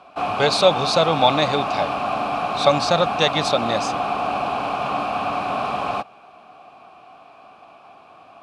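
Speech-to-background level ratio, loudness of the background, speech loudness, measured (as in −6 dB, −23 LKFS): 3.5 dB, −24.0 LKFS, −20.5 LKFS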